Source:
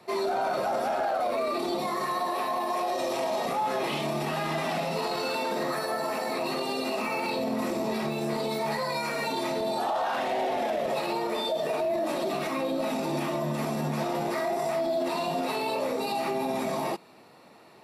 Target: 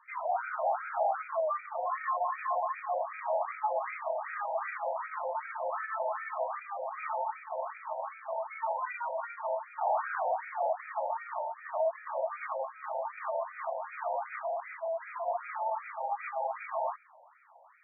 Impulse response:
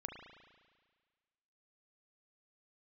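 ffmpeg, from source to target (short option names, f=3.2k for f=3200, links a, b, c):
-filter_complex "[0:a]highpass=370,lowpass=5.1k,asettb=1/sr,asplit=3[a][b][c];[a]atrim=end=14.314[d];[b]atrim=start=14.31:end=15.28,asetpts=PTS-STARTPTS,afade=t=in:d=0.004:c=qsin,afade=t=out:st=0.966:d=0.004:c=qsin,asoftclip=type=hard:threshold=-31dB[e];[c]atrim=start=15.276[f];[d][e]acrossfade=d=0.004:c1=hsin:c2=qsin[g];[g][f]acrossfade=d=0.004:c1=qsin:c2=hsin,asplit=2[h][i];[1:a]atrim=start_sample=2205[j];[i][j]afir=irnorm=-1:irlink=0,volume=-16dB[k];[h][k]amix=inputs=2:normalize=0,afftfilt=real='re*between(b*sr/1024,680*pow(1800/680,0.5+0.5*sin(2*PI*2.6*pts/sr))/1.41,680*pow(1800/680,0.5+0.5*sin(2*PI*2.6*pts/sr))*1.41)':imag='im*between(b*sr/1024,680*pow(1800/680,0.5+0.5*sin(2*PI*2.6*pts/sr))/1.41,680*pow(1800/680,0.5+0.5*sin(2*PI*2.6*pts/sr))*1.41)':win_size=1024:overlap=0.75"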